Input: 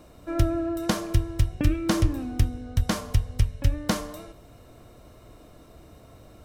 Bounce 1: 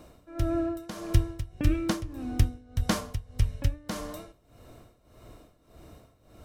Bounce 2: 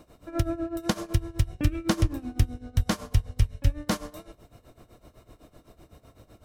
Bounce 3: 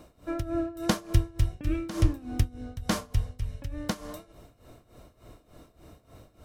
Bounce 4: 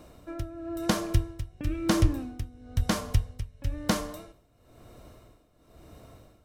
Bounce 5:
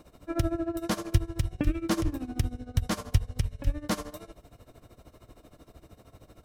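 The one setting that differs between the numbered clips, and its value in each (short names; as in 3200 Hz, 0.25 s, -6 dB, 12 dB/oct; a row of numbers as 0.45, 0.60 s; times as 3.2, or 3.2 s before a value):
tremolo, rate: 1.7, 7.9, 3.4, 1, 13 Hz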